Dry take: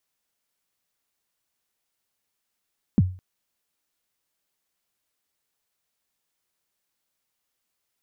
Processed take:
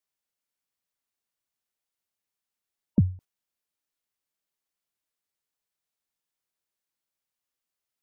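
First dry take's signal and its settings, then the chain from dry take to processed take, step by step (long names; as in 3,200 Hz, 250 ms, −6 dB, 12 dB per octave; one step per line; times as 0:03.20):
synth kick length 0.21 s, from 260 Hz, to 92 Hz, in 34 ms, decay 0.37 s, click off, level −10.5 dB
noise gate −43 dBFS, range −9 dB
gate on every frequency bin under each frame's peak −30 dB strong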